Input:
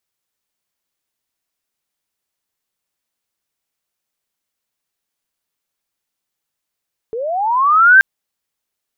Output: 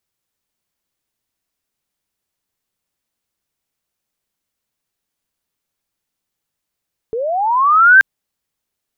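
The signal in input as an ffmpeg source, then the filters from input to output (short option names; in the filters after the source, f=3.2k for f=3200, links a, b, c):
-f lavfi -i "aevalsrc='pow(10,(-20.5+17.5*t/0.88)/20)*sin(2*PI*(430*t+1170*t*t/(2*0.88)))':d=0.88:s=44100"
-af "lowshelf=f=330:g=7"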